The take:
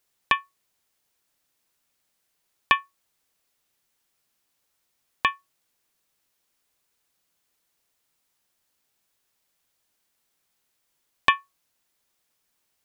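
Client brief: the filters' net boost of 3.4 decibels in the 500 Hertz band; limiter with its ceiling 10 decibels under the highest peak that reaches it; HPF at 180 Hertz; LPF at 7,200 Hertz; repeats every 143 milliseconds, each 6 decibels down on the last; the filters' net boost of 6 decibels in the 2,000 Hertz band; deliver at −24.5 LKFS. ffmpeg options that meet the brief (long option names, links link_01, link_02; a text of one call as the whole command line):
ffmpeg -i in.wav -af "highpass=180,lowpass=7200,equalizer=frequency=500:width_type=o:gain=4,equalizer=frequency=2000:width_type=o:gain=7,alimiter=limit=-9dB:level=0:latency=1,aecho=1:1:143|286|429|572|715|858:0.501|0.251|0.125|0.0626|0.0313|0.0157,volume=4.5dB" out.wav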